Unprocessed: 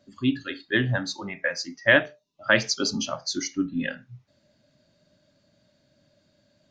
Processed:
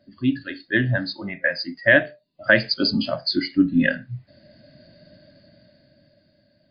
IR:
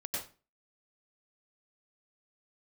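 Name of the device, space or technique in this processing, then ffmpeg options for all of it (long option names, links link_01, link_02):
low-bitrate web radio: -af "superequalizer=7b=0.501:9b=0.355:10b=0.355:12b=0.562:13b=0.447,dynaudnorm=framelen=230:gausssize=13:maxgain=16dB,alimiter=limit=-5.5dB:level=0:latency=1:release=364,volume=3dB" -ar 11025 -c:a libmp3lame -b:a 40k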